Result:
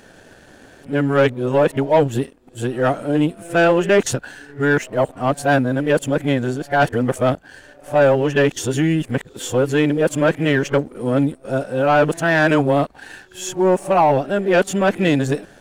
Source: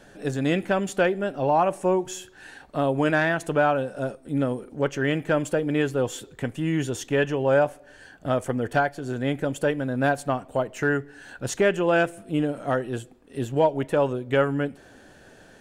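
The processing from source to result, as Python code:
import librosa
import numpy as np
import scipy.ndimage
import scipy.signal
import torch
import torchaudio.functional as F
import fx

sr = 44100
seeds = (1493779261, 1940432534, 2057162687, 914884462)

y = np.flip(x).copy()
y = fx.leveller(y, sr, passes=1)
y = y * librosa.db_to_amplitude(4.0)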